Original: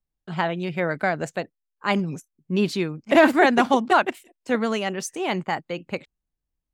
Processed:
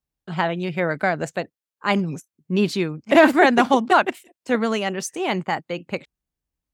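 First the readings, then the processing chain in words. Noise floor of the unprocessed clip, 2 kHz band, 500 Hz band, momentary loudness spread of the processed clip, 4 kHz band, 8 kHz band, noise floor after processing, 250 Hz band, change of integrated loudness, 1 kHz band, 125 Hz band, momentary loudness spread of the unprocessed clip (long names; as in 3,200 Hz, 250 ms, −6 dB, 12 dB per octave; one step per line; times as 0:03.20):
−84 dBFS, +2.0 dB, +2.0 dB, 16 LU, +2.0 dB, +2.0 dB, below −85 dBFS, +2.0 dB, +2.0 dB, +2.0 dB, +2.0 dB, 16 LU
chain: high-pass filter 44 Hz
level +2 dB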